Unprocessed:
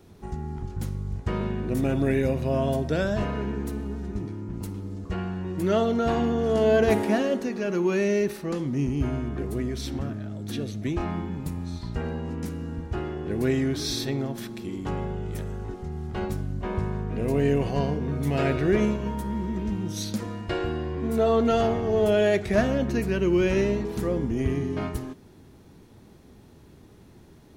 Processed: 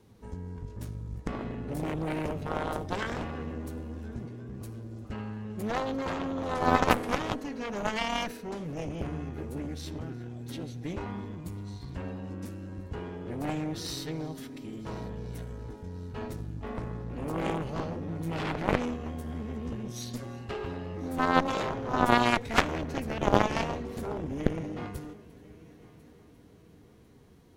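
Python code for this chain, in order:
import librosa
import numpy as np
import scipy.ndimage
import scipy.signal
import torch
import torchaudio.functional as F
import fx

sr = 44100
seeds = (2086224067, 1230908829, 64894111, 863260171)

y = fx.pitch_keep_formants(x, sr, semitones=2.5)
y = fx.echo_heads(y, sr, ms=349, heads='first and third', feedback_pct=56, wet_db=-23.0)
y = fx.cheby_harmonics(y, sr, harmonics=(2, 3, 8), levels_db=(-10, -8, -43), full_scale_db=-7.5)
y = y * librosa.db_to_amplitude(8.0)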